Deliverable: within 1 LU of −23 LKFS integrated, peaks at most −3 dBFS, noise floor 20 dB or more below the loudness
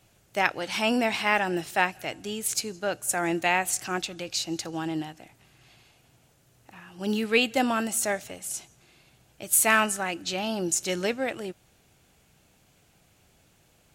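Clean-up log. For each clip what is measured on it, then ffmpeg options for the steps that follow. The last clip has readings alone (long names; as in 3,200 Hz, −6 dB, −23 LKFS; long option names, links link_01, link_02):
integrated loudness −26.5 LKFS; sample peak −5.5 dBFS; target loudness −23.0 LKFS
→ -af "volume=3.5dB,alimiter=limit=-3dB:level=0:latency=1"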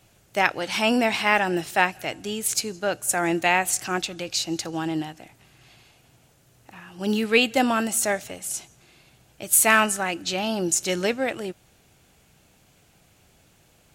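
integrated loudness −23.0 LKFS; sample peak −3.0 dBFS; background noise floor −60 dBFS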